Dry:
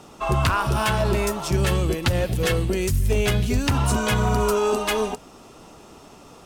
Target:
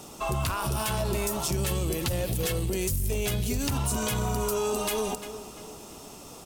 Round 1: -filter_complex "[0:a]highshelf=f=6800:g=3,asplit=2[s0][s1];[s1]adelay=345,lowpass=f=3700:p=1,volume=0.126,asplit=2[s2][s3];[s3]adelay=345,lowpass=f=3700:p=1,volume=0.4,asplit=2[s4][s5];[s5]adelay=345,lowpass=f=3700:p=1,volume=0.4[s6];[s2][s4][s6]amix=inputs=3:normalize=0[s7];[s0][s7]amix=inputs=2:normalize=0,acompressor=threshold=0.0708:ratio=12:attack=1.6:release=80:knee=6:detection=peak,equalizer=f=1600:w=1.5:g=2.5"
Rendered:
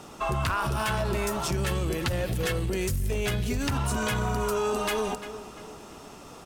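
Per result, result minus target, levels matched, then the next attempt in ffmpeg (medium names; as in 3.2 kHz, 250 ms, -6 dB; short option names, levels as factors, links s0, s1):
8 kHz band -5.0 dB; 2 kHz band +4.5 dB
-filter_complex "[0:a]highshelf=f=6800:g=14.5,asplit=2[s0][s1];[s1]adelay=345,lowpass=f=3700:p=1,volume=0.126,asplit=2[s2][s3];[s3]adelay=345,lowpass=f=3700:p=1,volume=0.4,asplit=2[s4][s5];[s5]adelay=345,lowpass=f=3700:p=1,volume=0.4[s6];[s2][s4][s6]amix=inputs=3:normalize=0[s7];[s0][s7]amix=inputs=2:normalize=0,acompressor=threshold=0.0708:ratio=12:attack=1.6:release=80:knee=6:detection=peak,equalizer=f=1600:w=1.5:g=2.5"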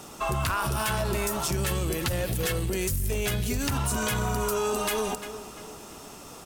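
2 kHz band +4.0 dB
-filter_complex "[0:a]highshelf=f=6800:g=14.5,asplit=2[s0][s1];[s1]adelay=345,lowpass=f=3700:p=1,volume=0.126,asplit=2[s2][s3];[s3]adelay=345,lowpass=f=3700:p=1,volume=0.4,asplit=2[s4][s5];[s5]adelay=345,lowpass=f=3700:p=1,volume=0.4[s6];[s2][s4][s6]amix=inputs=3:normalize=0[s7];[s0][s7]amix=inputs=2:normalize=0,acompressor=threshold=0.0708:ratio=12:attack=1.6:release=80:knee=6:detection=peak,equalizer=f=1600:w=1.5:g=-4.5"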